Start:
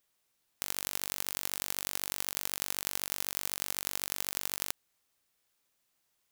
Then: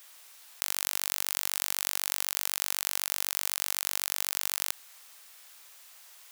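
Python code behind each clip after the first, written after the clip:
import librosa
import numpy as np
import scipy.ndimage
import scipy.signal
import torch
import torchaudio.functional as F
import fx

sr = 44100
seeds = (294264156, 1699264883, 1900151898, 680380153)

y = scipy.signal.sosfilt(scipy.signal.butter(2, 760.0, 'highpass', fs=sr, output='sos'), x)
y = fx.env_flatten(y, sr, amount_pct=50)
y = y * 10.0 ** (2.5 / 20.0)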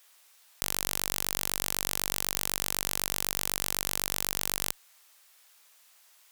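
y = fx.cheby_harmonics(x, sr, harmonics=(7,), levels_db=(-14,), full_scale_db=-1.0)
y = fx.low_shelf(y, sr, hz=87.0, db=5.0)
y = y * 10.0 ** (1.0 / 20.0)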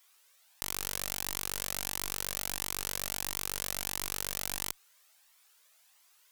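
y = fx.comb_cascade(x, sr, direction='rising', hz=1.5)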